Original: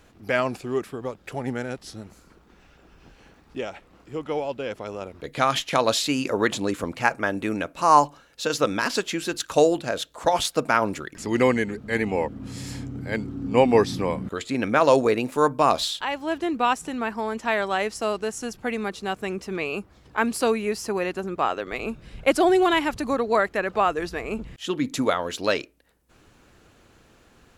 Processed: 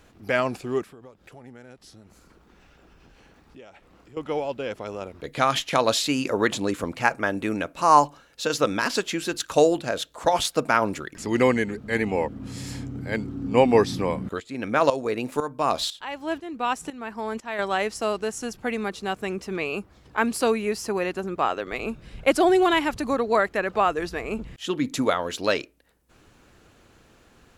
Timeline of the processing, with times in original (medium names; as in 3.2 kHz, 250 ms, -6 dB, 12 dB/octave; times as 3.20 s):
0.83–4.17 s: compression 2.5:1, threshold -50 dBFS
14.40–17.59 s: tremolo saw up 2 Hz, depth 80%